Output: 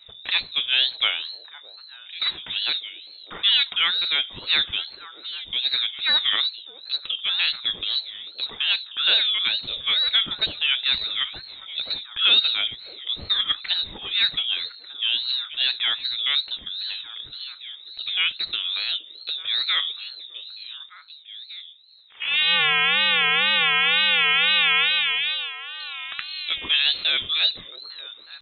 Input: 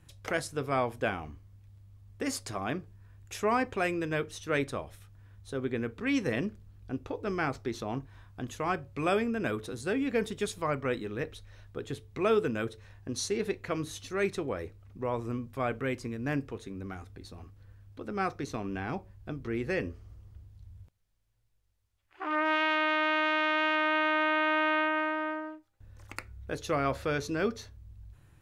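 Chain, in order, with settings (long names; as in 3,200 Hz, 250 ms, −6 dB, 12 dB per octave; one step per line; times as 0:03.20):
voice inversion scrambler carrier 3,900 Hz
echo through a band-pass that steps 603 ms, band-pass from 440 Hz, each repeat 1.4 octaves, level −9 dB
tape wow and flutter 140 cents
level +8 dB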